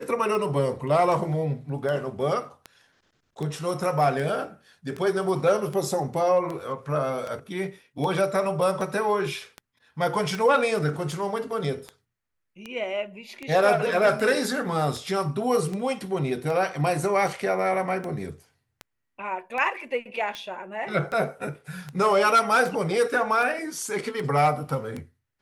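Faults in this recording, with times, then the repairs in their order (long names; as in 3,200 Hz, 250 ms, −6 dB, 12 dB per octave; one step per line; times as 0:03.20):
scratch tick 78 rpm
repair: click removal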